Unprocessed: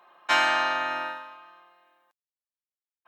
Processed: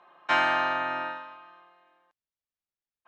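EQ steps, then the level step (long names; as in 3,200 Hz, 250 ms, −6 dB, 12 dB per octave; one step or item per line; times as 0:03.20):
dynamic equaliser 4,800 Hz, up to −5 dB, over −39 dBFS, Q 0.73
high-frequency loss of the air 110 metres
low-shelf EQ 170 Hz +9.5 dB
0.0 dB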